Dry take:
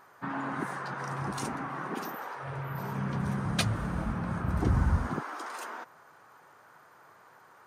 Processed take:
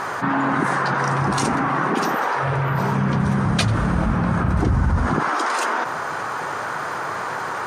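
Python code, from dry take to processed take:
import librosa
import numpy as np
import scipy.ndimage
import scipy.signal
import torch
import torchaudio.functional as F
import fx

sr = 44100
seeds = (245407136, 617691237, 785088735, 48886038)

p1 = scipy.signal.sosfilt(scipy.signal.butter(2, 8700.0, 'lowpass', fs=sr, output='sos'), x)
p2 = p1 + fx.echo_single(p1, sr, ms=91, db=-21.5, dry=0)
p3 = fx.env_flatten(p2, sr, amount_pct=70)
y = p3 * librosa.db_to_amplitude(5.0)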